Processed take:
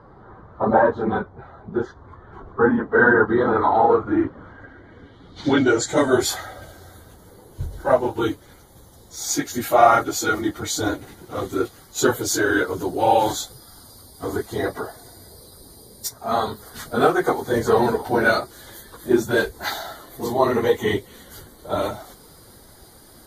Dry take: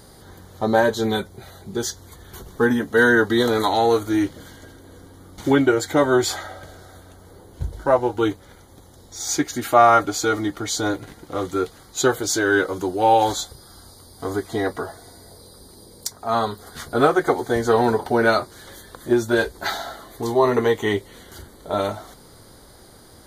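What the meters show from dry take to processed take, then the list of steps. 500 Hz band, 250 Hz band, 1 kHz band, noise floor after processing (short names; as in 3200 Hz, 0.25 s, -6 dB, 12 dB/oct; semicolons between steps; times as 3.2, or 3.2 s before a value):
-0.5 dB, -0.5 dB, 0.0 dB, -48 dBFS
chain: phase scrambler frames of 50 ms; low-pass sweep 1200 Hz -> 14000 Hz, 4.44–6.39; gain -1 dB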